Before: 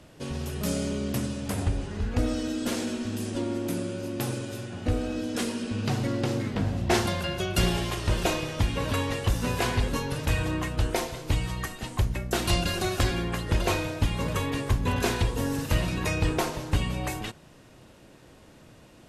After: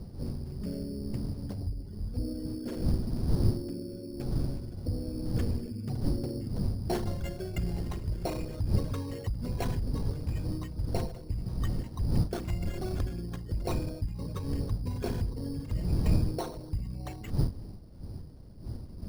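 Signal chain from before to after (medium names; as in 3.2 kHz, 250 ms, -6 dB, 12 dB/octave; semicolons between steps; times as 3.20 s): resonances exaggerated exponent 2; wind noise 120 Hz -26 dBFS; sample-rate reducer 4.9 kHz, jitter 0%; trim -7.5 dB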